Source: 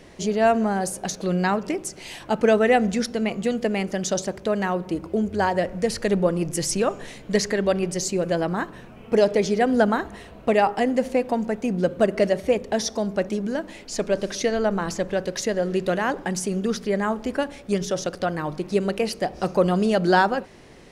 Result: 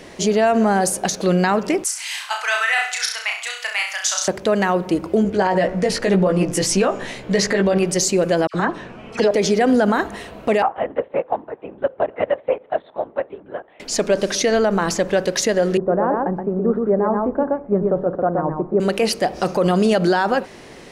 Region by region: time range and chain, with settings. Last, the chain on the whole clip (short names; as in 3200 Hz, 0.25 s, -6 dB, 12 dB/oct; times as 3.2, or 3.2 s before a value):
1.84–4.28 inverse Chebyshev high-pass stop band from 240 Hz, stop band 70 dB + flutter echo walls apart 5.7 m, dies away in 0.48 s
5.23–7.78 LPF 4000 Hz 6 dB/oct + doubler 16 ms -3 dB
8.47–9.31 LPF 6500 Hz + dispersion lows, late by 72 ms, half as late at 1800 Hz
10.62–13.8 LPC vocoder at 8 kHz whisper + band-pass 850 Hz, Q 1 + upward expander, over -41 dBFS
15.77–18.8 LPF 1100 Hz 24 dB/oct + echo 0.124 s -4 dB + three-band expander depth 70%
whole clip: low shelf 150 Hz -9 dB; maximiser +16.5 dB; gain -7.5 dB